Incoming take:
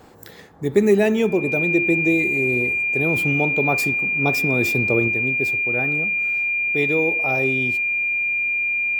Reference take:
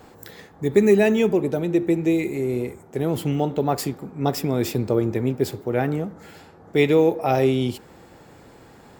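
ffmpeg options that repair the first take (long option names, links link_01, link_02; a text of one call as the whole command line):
ffmpeg -i in.wav -af "bandreject=frequency=2400:width=30,asetnsamples=nb_out_samples=441:pad=0,asendcmd='5.08 volume volume 5.5dB',volume=0dB" out.wav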